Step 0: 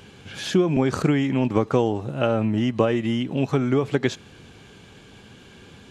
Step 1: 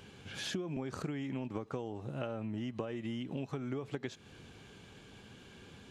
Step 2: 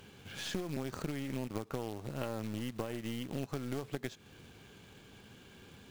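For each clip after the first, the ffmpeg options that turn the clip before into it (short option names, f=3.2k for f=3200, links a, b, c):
-af "acompressor=threshold=-28dB:ratio=6,volume=-7.5dB"
-af "aeval=exprs='(tanh(31.6*val(0)+0.75)-tanh(0.75))/31.6':c=same,acrusher=bits=3:mode=log:mix=0:aa=0.000001,volume=3dB"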